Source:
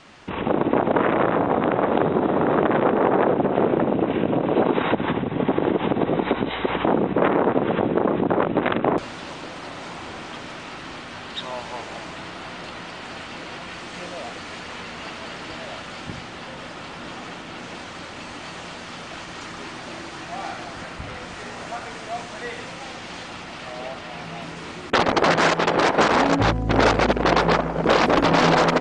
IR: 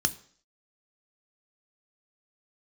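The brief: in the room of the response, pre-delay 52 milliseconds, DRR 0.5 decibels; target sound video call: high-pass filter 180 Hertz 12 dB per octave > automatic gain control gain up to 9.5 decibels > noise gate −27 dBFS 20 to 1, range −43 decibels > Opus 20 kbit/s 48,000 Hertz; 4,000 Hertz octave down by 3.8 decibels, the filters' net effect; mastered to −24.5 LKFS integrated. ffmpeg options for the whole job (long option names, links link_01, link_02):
-filter_complex "[0:a]equalizer=frequency=4000:width_type=o:gain=-5,asplit=2[link_01][link_02];[1:a]atrim=start_sample=2205,adelay=52[link_03];[link_02][link_03]afir=irnorm=-1:irlink=0,volume=-8dB[link_04];[link_01][link_04]amix=inputs=2:normalize=0,highpass=180,dynaudnorm=maxgain=9.5dB,agate=range=-43dB:threshold=-27dB:ratio=20,volume=-6dB" -ar 48000 -c:a libopus -b:a 20k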